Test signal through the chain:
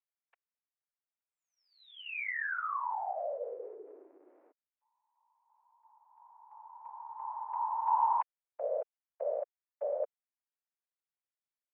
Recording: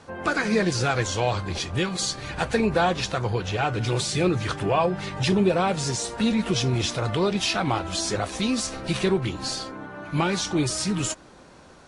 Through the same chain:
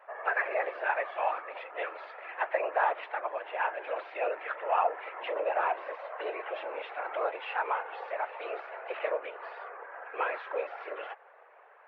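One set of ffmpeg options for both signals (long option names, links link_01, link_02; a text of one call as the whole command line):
ffmpeg -i in.wav -af "afftfilt=real='hypot(re,im)*cos(2*PI*random(0))':imag='hypot(re,im)*sin(2*PI*random(1))':win_size=512:overlap=0.75,highpass=frequency=380:width_type=q:width=0.5412,highpass=frequency=380:width_type=q:width=1.307,lowpass=frequency=2300:width_type=q:width=0.5176,lowpass=frequency=2300:width_type=q:width=0.7071,lowpass=frequency=2300:width_type=q:width=1.932,afreqshift=140,acontrast=48,volume=-4.5dB" out.wav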